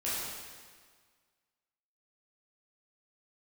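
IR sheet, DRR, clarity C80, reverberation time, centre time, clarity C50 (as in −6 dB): −10.0 dB, 0.0 dB, 1.7 s, 120 ms, −2.5 dB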